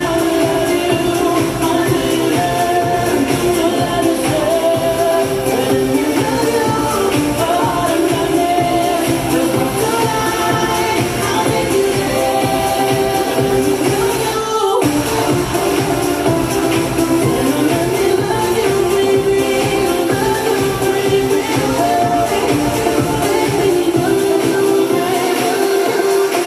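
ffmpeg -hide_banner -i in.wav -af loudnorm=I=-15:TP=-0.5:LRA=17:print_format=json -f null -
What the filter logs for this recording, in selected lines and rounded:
"input_i" : "-14.7",
"input_tp" : "-1.6",
"input_lra" : "0.8",
"input_thresh" : "-24.7",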